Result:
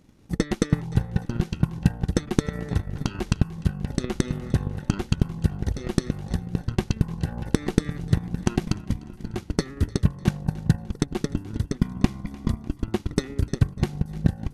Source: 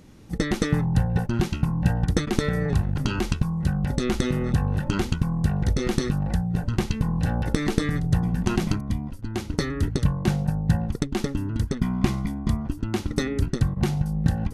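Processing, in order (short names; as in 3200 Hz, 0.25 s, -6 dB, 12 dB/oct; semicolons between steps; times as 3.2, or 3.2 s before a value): split-band echo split 300 Hz, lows 0.626 s, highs 0.299 s, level -11 dB; transient shaper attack +12 dB, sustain -5 dB; gain -9 dB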